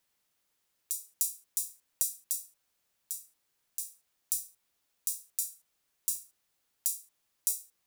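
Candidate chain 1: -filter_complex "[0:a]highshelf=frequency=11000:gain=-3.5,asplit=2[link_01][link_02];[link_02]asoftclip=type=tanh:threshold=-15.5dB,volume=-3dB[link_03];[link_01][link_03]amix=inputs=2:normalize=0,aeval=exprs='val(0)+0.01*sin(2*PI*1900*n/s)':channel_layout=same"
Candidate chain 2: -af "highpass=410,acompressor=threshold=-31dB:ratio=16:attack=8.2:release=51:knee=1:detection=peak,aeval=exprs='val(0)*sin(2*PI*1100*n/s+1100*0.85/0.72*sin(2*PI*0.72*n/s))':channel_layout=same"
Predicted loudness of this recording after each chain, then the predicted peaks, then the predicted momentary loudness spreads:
−32.5, −40.0 LKFS; −4.5, −5.0 dBFS; 12, 7 LU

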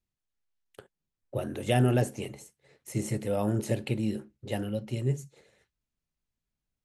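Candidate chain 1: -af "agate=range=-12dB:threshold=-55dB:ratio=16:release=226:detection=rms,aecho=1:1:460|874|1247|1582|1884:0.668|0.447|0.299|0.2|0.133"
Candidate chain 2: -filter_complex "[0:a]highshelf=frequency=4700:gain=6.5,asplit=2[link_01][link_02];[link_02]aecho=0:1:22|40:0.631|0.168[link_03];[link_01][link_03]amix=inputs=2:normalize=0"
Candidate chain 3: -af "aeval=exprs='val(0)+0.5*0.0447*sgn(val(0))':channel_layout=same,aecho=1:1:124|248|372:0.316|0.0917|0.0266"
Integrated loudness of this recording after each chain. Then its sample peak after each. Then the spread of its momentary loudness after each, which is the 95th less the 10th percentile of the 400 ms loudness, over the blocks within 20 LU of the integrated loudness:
−29.5, −29.0, −28.0 LKFS; −12.0, −12.0, −11.5 dBFS; 13, 14, 12 LU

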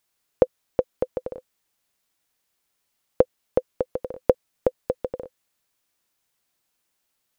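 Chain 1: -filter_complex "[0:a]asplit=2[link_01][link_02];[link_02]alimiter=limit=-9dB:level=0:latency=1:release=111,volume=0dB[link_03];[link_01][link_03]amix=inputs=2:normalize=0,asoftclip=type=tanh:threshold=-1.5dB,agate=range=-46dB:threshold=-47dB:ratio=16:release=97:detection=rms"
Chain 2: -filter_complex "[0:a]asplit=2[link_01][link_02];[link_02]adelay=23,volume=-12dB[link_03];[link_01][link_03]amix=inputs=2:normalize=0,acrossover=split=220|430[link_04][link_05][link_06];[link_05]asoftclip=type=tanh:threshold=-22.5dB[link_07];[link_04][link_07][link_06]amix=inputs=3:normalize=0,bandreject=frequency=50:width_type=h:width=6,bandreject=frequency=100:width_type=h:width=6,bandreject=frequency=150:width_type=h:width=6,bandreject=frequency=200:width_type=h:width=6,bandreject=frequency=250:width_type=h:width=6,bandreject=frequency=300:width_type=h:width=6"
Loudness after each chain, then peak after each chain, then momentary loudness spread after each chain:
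−25.0, −29.0 LKFS; −2.5, −4.0 dBFS; 8, 10 LU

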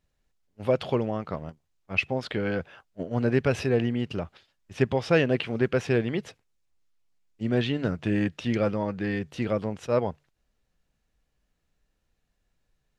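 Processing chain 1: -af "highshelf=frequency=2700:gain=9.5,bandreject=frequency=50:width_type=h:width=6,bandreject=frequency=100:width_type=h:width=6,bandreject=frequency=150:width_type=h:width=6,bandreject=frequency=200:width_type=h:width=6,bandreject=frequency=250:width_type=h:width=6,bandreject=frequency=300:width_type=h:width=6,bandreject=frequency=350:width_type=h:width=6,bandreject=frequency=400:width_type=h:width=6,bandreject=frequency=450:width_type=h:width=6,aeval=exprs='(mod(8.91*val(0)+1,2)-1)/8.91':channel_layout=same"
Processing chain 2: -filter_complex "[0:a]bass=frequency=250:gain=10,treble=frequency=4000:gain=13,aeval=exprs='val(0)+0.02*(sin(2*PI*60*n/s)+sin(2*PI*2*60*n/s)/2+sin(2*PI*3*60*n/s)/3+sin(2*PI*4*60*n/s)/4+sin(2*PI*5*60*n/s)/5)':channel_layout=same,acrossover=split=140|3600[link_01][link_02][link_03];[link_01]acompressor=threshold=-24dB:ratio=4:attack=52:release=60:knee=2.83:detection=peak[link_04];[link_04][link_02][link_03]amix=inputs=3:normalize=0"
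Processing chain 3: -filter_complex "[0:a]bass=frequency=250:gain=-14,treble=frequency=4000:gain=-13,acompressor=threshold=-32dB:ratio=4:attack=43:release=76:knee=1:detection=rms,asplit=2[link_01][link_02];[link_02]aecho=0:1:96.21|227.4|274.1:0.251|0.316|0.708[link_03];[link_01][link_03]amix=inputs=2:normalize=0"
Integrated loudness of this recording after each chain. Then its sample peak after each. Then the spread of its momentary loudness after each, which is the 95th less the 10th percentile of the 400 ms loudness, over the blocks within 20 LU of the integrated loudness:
−28.0, −23.0, −33.0 LKFS; −19.0, −4.5, −15.0 dBFS; 11, 18, 8 LU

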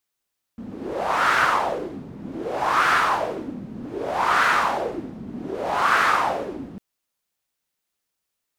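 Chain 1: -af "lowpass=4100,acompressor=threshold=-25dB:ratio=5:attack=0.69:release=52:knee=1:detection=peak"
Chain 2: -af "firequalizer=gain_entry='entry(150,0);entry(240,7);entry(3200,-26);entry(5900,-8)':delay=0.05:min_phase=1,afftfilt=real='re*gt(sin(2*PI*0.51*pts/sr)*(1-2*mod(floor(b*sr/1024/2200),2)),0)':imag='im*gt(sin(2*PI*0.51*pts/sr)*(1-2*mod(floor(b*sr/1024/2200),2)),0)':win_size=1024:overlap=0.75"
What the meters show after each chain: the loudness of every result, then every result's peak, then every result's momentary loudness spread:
−30.5, −25.5 LKFS; −18.5, −10.0 dBFS; 8, 13 LU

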